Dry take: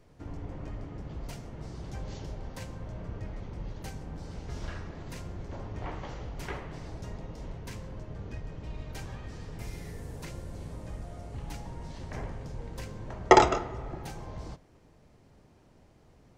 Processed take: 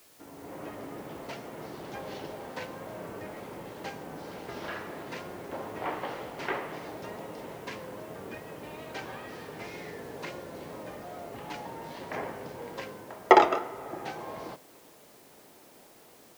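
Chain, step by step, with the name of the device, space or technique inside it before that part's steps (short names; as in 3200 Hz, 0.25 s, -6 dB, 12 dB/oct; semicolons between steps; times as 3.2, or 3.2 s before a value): dictaphone (BPF 330–3500 Hz; AGC gain up to 9 dB; wow and flutter; white noise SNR 24 dB); gain -1 dB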